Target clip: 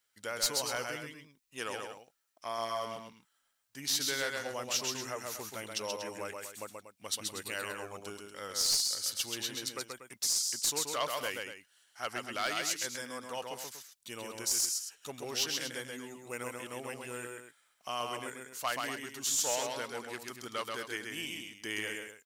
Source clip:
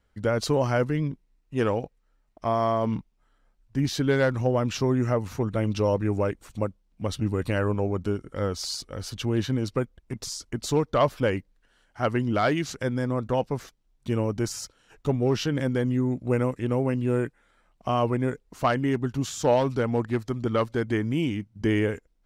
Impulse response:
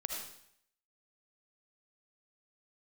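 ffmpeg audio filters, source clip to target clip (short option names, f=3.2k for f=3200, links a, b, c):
-af "aderivative,aecho=1:1:131.2|239.1:0.631|0.282,aeval=exprs='clip(val(0),-1,0.0282)':c=same,volume=6.5dB"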